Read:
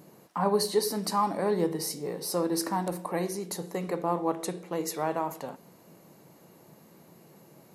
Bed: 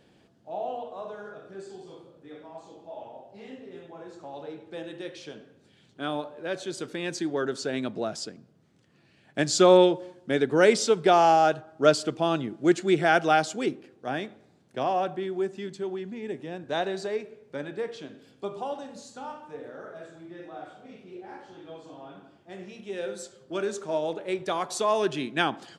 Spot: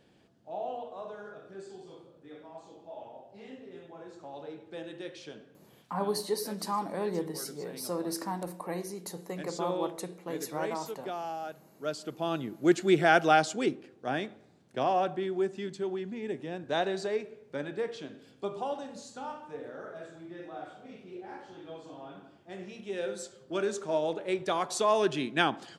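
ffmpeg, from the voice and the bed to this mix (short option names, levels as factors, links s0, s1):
-filter_complex "[0:a]adelay=5550,volume=0.531[s0];[1:a]volume=4.73,afade=t=out:st=5.79:d=0.21:silence=0.188365,afade=t=in:st=11.81:d=1.05:silence=0.141254[s1];[s0][s1]amix=inputs=2:normalize=0"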